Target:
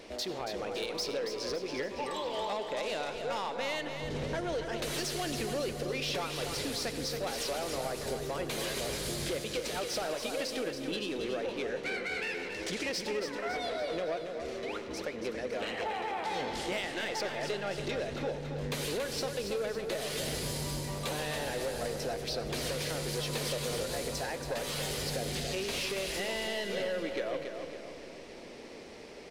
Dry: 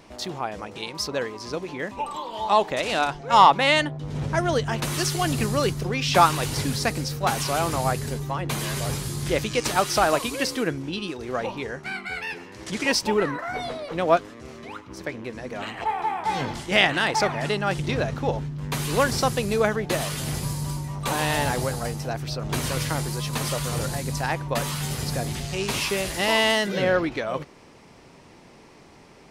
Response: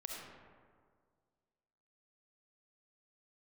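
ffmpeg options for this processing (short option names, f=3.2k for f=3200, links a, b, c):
-filter_complex "[0:a]equalizer=f=125:t=o:w=1:g=-9,equalizer=f=500:t=o:w=1:g=9,equalizer=f=1k:t=o:w=1:g=-6,equalizer=f=2k:t=o:w=1:g=3,equalizer=f=4k:t=o:w=1:g=5,acompressor=threshold=-29dB:ratio=6,asoftclip=type=tanh:threshold=-27dB,aecho=1:1:279|558|837|1116|1395|1674:0.422|0.202|0.0972|0.0466|0.0224|0.0107,asplit=2[a][b];[1:a]atrim=start_sample=2205,asetrate=33075,aresample=44100[c];[b][c]afir=irnorm=-1:irlink=0,volume=-8.5dB[d];[a][d]amix=inputs=2:normalize=0,volume=-3.5dB"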